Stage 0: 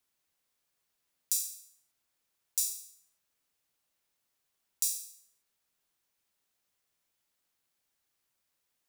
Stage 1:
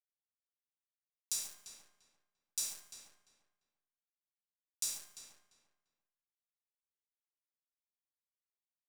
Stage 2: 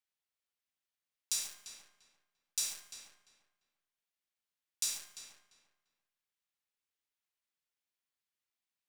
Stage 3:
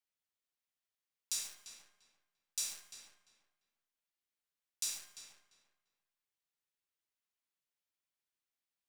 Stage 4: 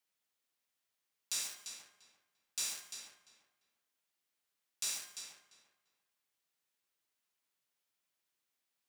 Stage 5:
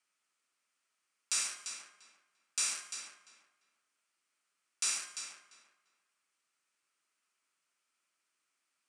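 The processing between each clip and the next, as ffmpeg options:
-filter_complex "[0:a]bandpass=f=2.5k:t=q:w=0.54:csg=0,acrusher=bits=8:dc=4:mix=0:aa=0.000001,asplit=2[a][b];[b]adelay=345,lowpass=f=2.7k:p=1,volume=-8dB,asplit=2[c][d];[d]adelay=345,lowpass=f=2.7k:p=1,volume=0.23,asplit=2[e][f];[f]adelay=345,lowpass=f=2.7k:p=1,volume=0.23[g];[a][c][e][g]amix=inputs=4:normalize=0"
-af "equalizer=f=2.6k:t=o:w=2.3:g=6.5"
-af "flanger=delay=9.3:depth=5.5:regen=-42:speed=0.98:shape=sinusoidal,volume=1dB"
-filter_complex "[0:a]highpass=f=140:p=1,acrossover=split=3200[a][b];[b]alimiter=level_in=4.5dB:limit=-24dB:level=0:latency=1:release=196,volume=-4.5dB[c];[a][c]amix=inputs=2:normalize=0,volume=6dB"
-af "highpass=230,equalizer=f=480:t=q:w=4:g=-5,equalizer=f=790:t=q:w=4:g=-4,equalizer=f=1.3k:t=q:w=4:g=8,equalizer=f=2.4k:t=q:w=4:g=4,equalizer=f=3.7k:t=q:w=4:g=-5,equalizer=f=8.9k:t=q:w=4:g=5,lowpass=f=9.2k:w=0.5412,lowpass=f=9.2k:w=1.3066,volume=4.5dB"

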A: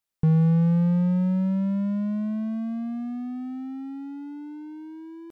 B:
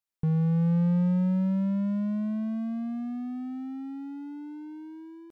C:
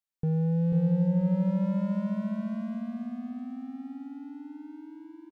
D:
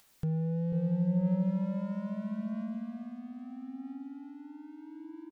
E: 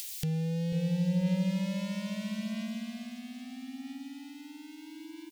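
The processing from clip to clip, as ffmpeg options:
-af "dynaudnorm=f=250:g=5:m=4.5dB,volume=-6.5dB"
-filter_complex "[0:a]asplit=2[a][b];[b]acrusher=bits=3:mix=0:aa=0.5,volume=-10dB[c];[a][c]amix=inputs=2:normalize=0,aecho=1:1:491|982|1473:0.531|0.133|0.0332,volume=-4.5dB"
-af "acompressor=mode=upward:threshold=-35dB:ratio=2.5,aphaser=in_gain=1:out_gain=1:delay=2.2:decay=0.22:speed=0.77:type=sinusoidal,volume=-5dB"
-af "aexciter=amount=9.1:drive=6.9:freq=2k"

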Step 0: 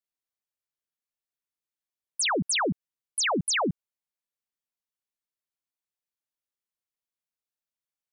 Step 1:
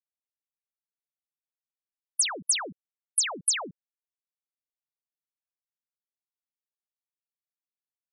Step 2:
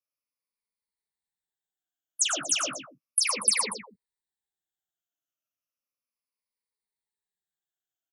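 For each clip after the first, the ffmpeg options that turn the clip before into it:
-af "afftfilt=real='re*gte(hypot(re,im),0.00398)':imag='im*gte(hypot(re,im),0.00398)':win_size=1024:overlap=0.75,aemphasis=mode=production:type=riaa,volume=-8.5dB"
-filter_complex "[0:a]afftfilt=real='re*pow(10,18/40*sin(2*PI*(0.91*log(max(b,1)*sr/1024/100)/log(2)-(-0.34)*(pts-256)/sr)))':imag='im*pow(10,18/40*sin(2*PI*(0.91*log(max(b,1)*sr/1024/100)/log(2)-(-0.34)*(pts-256)/sr)))':win_size=1024:overlap=0.75,flanger=delay=9.3:depth=6:regen=-15:speed=0.56:shape=sinusoidal,asplit=2[a][b];[b]aecho=0:1:44|94|112|238:0.15|0.2|0.501|0.168[c];[a][c]amix=inputs=2:normalize=0"

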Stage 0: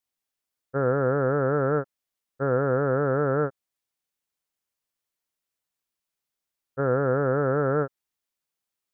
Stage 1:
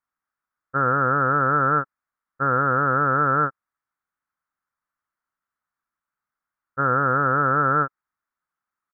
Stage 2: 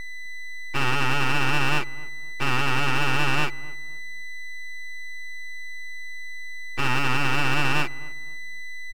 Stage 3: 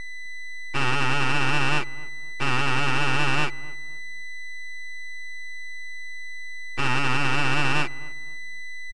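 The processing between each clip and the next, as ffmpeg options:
-af "firequalizer=gain_entry='entry(290,0);entry(420,-6);entry(1300,14);entry(2800,-13)':delay=0.05:min_phase=1"
-filter_complex "[0:a]aeval=exprs='val(0)+0.0355*sin(2*PI*1000*n/s)':c=same,aeval=exprs='abs(val(0))':c=same,asplit=2[a][b];[b]adelay=257,lowpass=f=1k:p=1,volume=-18.5dB,asplit=2[c][d];[d]adelay=257,lowpass=f=1k:p=1,volume=0.35,asplit=2[e][f];[f]adelay=257,lowpass=f=1k:p=1,volume=0.35[g];[a][c][e][g]amix=inputs=4:normalize=0"
-af "aresample=22050,aresample=44100"

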